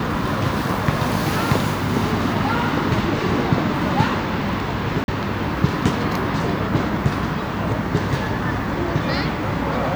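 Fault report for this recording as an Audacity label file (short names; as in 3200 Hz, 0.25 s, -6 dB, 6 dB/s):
5.040000	5.080000	gap 41 ms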